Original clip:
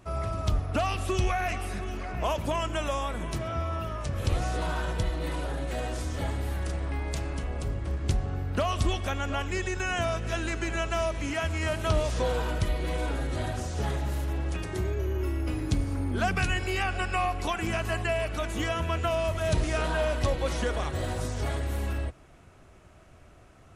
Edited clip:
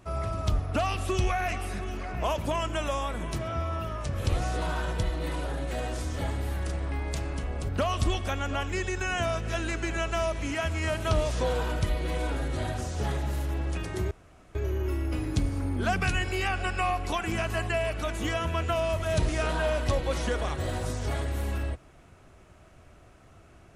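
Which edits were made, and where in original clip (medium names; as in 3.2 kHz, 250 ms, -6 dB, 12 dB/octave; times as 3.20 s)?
7.69–8.48 s: delete
14.90 s: insert room tone 0.44 s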